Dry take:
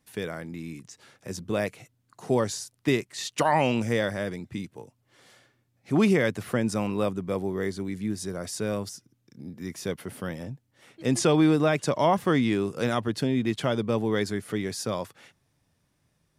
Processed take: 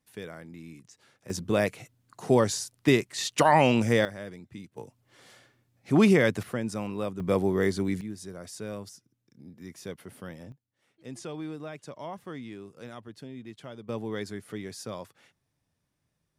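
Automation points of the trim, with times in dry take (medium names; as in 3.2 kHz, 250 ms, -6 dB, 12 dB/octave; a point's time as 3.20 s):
-7.5 dB
from 1.30 s +2.5 dB
from 4.05 s -9 dB
from 4.77 s +1.5 dB
from 6.43 s -5.5 dB
from 7.20 s +4 dB
from 8.01 s -8 dB
from 10.52 s -17 dB
from 13.89 s -8 dB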